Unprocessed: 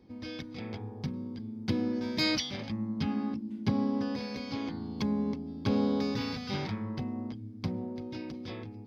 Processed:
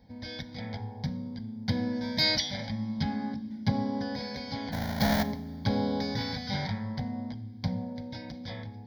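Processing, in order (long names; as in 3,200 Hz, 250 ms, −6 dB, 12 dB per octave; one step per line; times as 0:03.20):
0:04.72–0:05.23: each half-wave held at its own peak
phaser with its sweep stopped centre 1,800 Hz, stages 8
coupled-rooms reverb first 0.61 s, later 3.5 s, from −20 dB, DRR 11.5 dB
level +5.5 dB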